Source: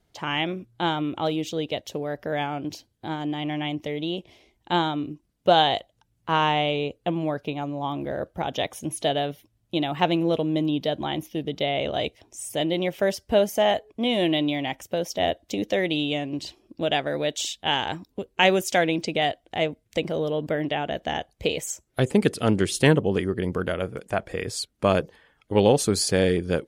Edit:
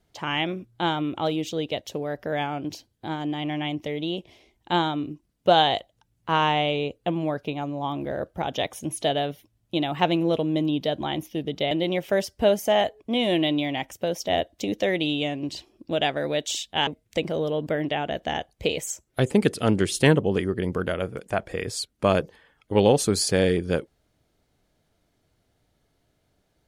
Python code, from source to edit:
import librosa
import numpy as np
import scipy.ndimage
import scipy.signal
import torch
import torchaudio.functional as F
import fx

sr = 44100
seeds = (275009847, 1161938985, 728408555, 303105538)

y = fx.edit(x, sr, fx.cut(start_s=11.71, length_s=0.9),
    fx.cut(start_s=17.77, length_s=1.9), tone=tone)